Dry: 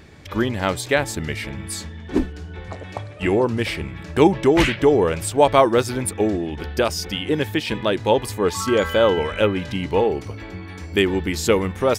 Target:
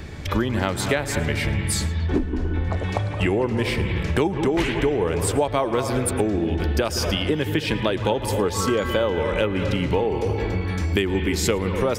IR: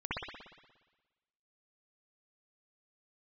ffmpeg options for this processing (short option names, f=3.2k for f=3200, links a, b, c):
-filter_complex "[0:a]acrossover=split=180|1500[a][b][c];[a]asoftclip=type=tanh:threshold=-25dB[d];[d][b][c]amix=inputs=3:normalize=0,lowshelf=f=89:g=10,asplit=2[e][f];[1:a]atrim=start_sample=2205,adelay=111[g];[f][g]afir=irnorm=-1:irlink=0,volume=-14.5dB[h];[e][h]amix=inputs=2:normalize=0,acompressor=threshold=-26dB:ratio=6,asettb=1/sr,asplit=3[i][j][k];[i]atrim=end=2.064[l];[j]atrim=start=2.06:end=2.77,asetpts=PTS-STARTPTS,afade=t=in:d=0.004:c=qsin,afade=t=out:st=0.706:d=0.004:c=qsin,highshelf=f=3.6k:g=-8[m];[k]atrim=start=2.766[n];[l][m]acrossfade=d=0.004:c1=hsin:c2=qsin[o];[o][n]acrossfade=d=0.004:c1=qsin:c2=hsin,volume=7dB"